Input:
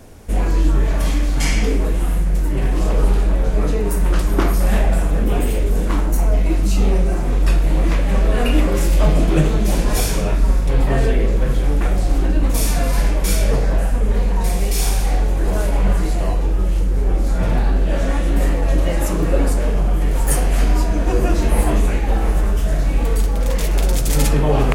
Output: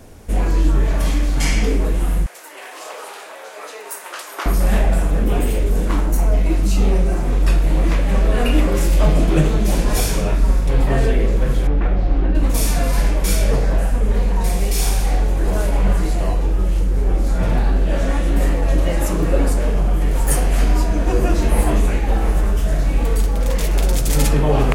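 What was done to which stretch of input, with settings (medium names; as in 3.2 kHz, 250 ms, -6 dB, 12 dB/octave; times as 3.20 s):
2.26–4.46 s: Bessel high-pass 860 Hz, order 4
11.67–12.35 s: distance through air 280 m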